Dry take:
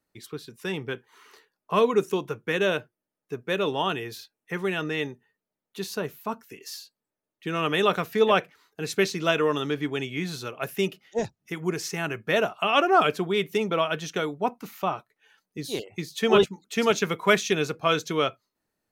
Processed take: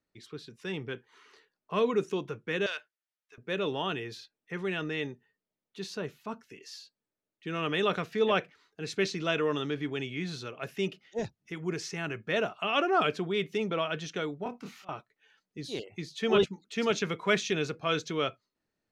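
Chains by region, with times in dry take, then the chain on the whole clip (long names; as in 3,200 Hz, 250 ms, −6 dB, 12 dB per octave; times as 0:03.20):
0:02.66–0:03.38: high-pass filter 1,300 Hz + saturating transformer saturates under 1,700 Hz
0:14.43–0:14.89: downward compressor, threshold −25 dBFS + volume swells 335 ms + double-tracking delay 25 ms −2.5 dB
whole clip: low-pass filter 5,700 Hz 12 dB per octave; parametric band 900 Hz −4 dB 1.1 octaves; transient designer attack −2 dB, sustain +2 dB; level −4 dB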